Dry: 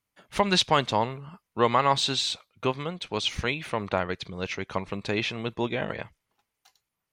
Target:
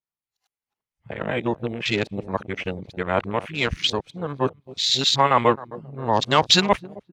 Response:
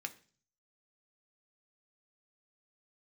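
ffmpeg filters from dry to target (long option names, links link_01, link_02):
-filter_complex "[0:a]areverse,asplit=2[link_01][link_02];[link_02]adelay=264,lowpass=frequency=1200:poles=1,volume=-16dB,asplit=2[link_03][link_04];[link_04]adelay=264,lowpass=frequency=1200:poles=1,volume=0.51,asplit=2[link_05][link_06];[link_06]adelay=264,lowpass=frequency=1200:poles=1,volume=0.51,asplit=2[link_07][link_08];[link_08]adelay=264,lowpass=frequency=1200:poles=1,volume=0.51,asplit=2[link_09][link_10];[link_10]adelay=264,lowpass=frequency=1200:poles=1,volume=0.51[link_11];[link_01][link_03][link_05][link_07][link_09][link_11]amix=inputs=6:normalize=0,asplit=2[link_12][link_13];[link_13]aeval=exprs='sgn(val(0))*max(abs(val(0))-0.00668,0)':channel_layout=same,volume=-10dB[link_14];[link_12][link_14]amix=inputs=2:normalize=0,afwtdn=0.0224,adynamicequalizer=threshold=0.0126:dfrequency=3900:dqfactor=0.7:tfrequency=3900:tqfactor=0.7:attack=5:release=100:ratio=0.375:range=3:mode=boostabove:tftype=highshelf,volume=2dB"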